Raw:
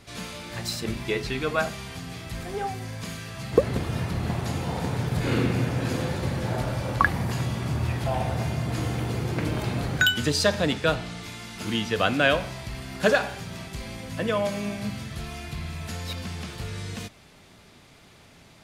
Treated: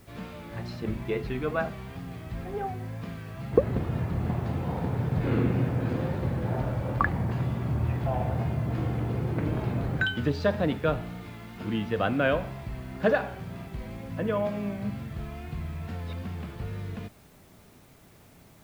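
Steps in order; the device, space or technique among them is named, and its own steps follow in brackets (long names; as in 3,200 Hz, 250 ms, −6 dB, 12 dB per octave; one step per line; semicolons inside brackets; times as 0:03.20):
cassette deck with a dirty head (head-to-tape spacing loss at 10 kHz 38 dB; tape wow and flutter; white noise bed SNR 33 dB)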